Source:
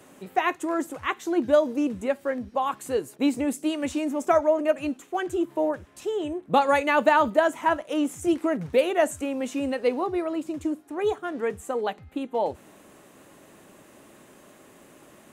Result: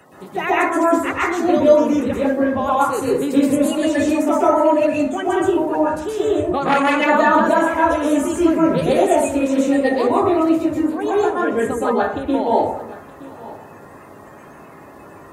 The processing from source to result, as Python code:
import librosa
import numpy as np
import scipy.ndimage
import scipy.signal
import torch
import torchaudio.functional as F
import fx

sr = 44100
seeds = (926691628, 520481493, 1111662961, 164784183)

p1 = fx.spec_quant(x, sr, step_db=30)
p2 = fx.over_compress(p1, sr, threshold_db=-26.0, ratio=-1.0)
p3 = p1 + F.gain(torch.from_numpy(p2), -1.0).numpy()
p4 = p3 + 10.0 ** (-19.0 / 20.0) * np.pad(p3, (int(920 * sr / 1000.0), 0))[:len(p3)]
p5 = fx.rev_plate(p4, sr, seeds[0], rt60_s=0.67, hf_ratio=0.4, predelay_ms=110, drr_db=-7.0)
p6 = fx.transformer_sat(p5, sr, knee_hz=1400.0, at=(6.63, 7.09))
y = F.gain(torch.from_numpy(p6), -3.5).numpy()